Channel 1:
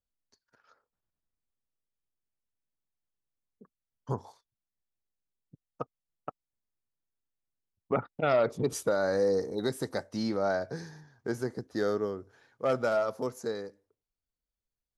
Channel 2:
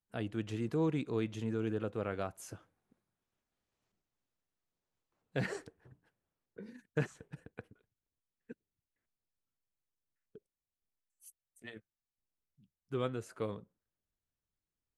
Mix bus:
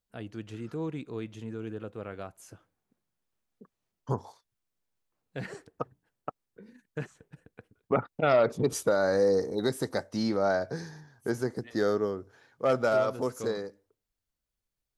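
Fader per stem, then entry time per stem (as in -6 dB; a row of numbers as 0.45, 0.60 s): +2.5, -2.5 dB; 0.00, 0.00 s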